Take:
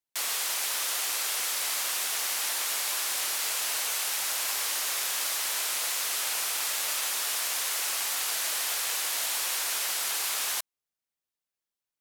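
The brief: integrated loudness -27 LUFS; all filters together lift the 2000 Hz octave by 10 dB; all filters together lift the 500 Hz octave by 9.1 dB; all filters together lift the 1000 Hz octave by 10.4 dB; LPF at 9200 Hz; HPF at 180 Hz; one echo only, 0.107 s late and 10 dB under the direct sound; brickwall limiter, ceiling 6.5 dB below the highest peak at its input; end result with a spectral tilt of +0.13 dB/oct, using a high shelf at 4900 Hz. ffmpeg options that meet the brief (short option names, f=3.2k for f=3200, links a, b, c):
-af "highpass=180,lowpass=9.2k,equalizer=f=500:t=o:g=8,equalizer=f=1k:t=o:g=8,equalizer=f=2k:t=o:g=8.5,highshelf=f=4.9k:g=7,alimiter=limit=-19dB:level=0:latency=1,aecho=1:1:107:0.316,volume=-1dB"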